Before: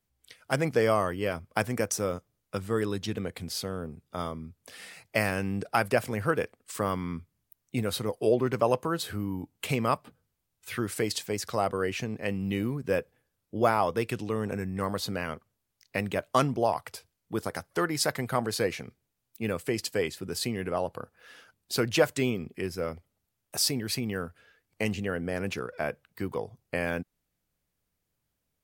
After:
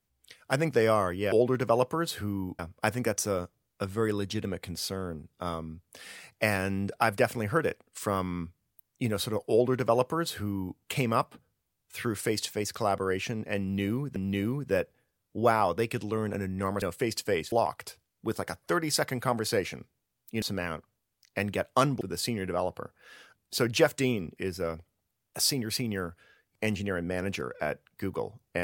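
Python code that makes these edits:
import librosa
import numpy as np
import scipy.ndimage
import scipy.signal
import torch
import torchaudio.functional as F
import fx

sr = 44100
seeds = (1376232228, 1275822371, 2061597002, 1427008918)

y = fx.edit(x, sr, fx.duplicate(start_s=8.24, length_s=1.27, to_s=1.32),
    fx.repeat(start_s=12.34, length_s=0.55, count=2),
    fx.swap(start_s=15.0, length_s=1.59, other_s=19.49, other_length_s=0.7), tone=tone)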